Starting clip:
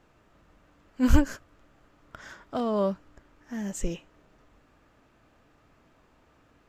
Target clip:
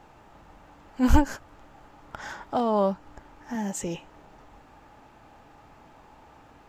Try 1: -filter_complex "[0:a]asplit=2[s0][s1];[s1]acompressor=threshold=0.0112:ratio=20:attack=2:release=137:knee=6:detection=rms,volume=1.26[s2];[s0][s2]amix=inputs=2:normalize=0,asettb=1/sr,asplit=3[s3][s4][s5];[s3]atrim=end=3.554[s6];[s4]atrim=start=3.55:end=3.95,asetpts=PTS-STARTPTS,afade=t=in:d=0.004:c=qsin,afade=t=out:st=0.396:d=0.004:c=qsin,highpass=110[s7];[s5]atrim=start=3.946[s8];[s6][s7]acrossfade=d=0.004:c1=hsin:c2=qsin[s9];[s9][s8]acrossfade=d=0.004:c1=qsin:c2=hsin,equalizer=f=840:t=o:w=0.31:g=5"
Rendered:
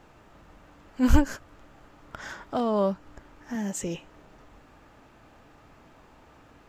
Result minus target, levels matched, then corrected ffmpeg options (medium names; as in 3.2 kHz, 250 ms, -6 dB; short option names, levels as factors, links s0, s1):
1 kHz band -4.0 dB
-filter_complex "[0:a]asplit=2[s0][s1];[s1]acompressor=threshold=0.0112:ratio=20:attack=2:release=137:knee=6:detection=rms,volume=1.26[s2];[s0][s2]amix=inputs=2:normalize=0,asettb=1/sr,asplit=3[s3][s4][s5];[s3]atrim=end=3.554[s6];[s4]atrim=start=3.55:end=3.95,asetpts=PTS-STARTPTS,afade=t=in:d=0.004:c=qsin,afade=t=out:st=0.396:d=0.004:c=qsin,highpass=110[s7];[s5]atrim=start=3.946[s8];[s6][s7]acrossfade=d=0.004:c1=hsin:c2=qsin[s9];[s9][s8]acrossfade=d=0.004:c1=qsin:c2=hsin,equalizer=f=840:t=o:w=0.31:g=13.5"